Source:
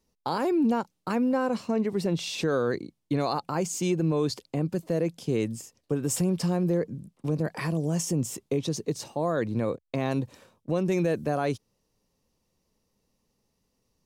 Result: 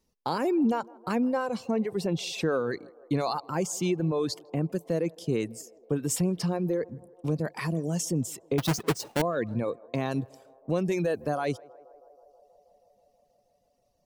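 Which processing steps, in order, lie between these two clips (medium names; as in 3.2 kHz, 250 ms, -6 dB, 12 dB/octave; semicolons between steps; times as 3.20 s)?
8.58–9.22 s: square wave that keeps the level; reverb removal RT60 1.2 s; band-passed feedback delay 160 ms, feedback 84%, band-pass 640 Hz, level -23 dB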